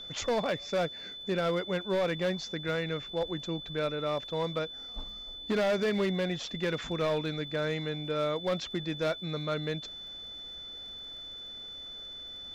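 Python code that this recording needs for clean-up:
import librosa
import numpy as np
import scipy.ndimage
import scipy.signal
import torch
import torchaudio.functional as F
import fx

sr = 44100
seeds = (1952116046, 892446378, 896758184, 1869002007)

y = fx.fix_declip(x, sr, threshold_db=-24.0)
y = fx.fix_declick_ar(y, sr, threshold=6.5)
y = fx.notch(y, sr, hz=3500.0, q=30.0)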